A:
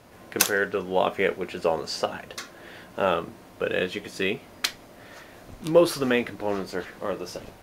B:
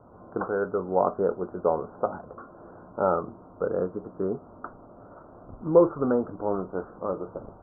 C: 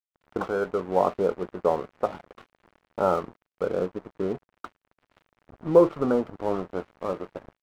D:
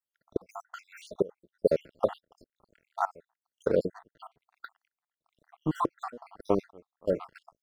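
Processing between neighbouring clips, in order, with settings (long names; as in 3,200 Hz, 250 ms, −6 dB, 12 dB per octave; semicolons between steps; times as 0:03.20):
Butterworth low-pass 1,400 Hz 96 dB per octave
dead-zone distortion −41.5 dBFS; level +1.5 dB
time-frequency cells dropped at random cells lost 71%; gate pattern "xxx.x.xxxx...xx" 123 BPM −24 dB; level +3.5 dB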